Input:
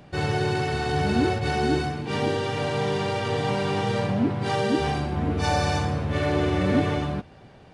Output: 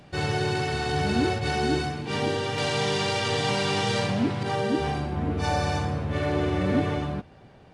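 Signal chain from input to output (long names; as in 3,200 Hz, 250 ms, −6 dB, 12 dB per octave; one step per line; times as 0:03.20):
parametric band 6,100 Hz +4 dB 2.9 octaves, from 0:02.58 +11 dB, from 0:04.43 −2 dB
level −2 dB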